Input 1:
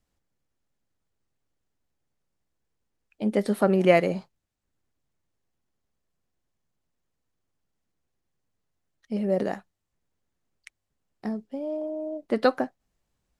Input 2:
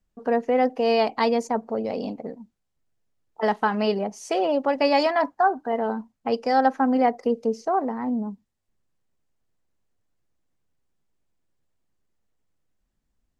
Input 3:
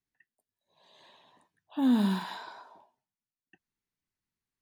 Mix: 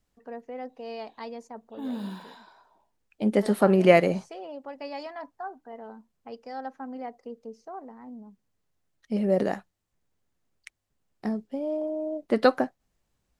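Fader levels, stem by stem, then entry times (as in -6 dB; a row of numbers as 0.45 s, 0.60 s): +1.5 dB, -17.0 dB, -9.0 dB; 0.00 s, 0.00 s, 0.00 s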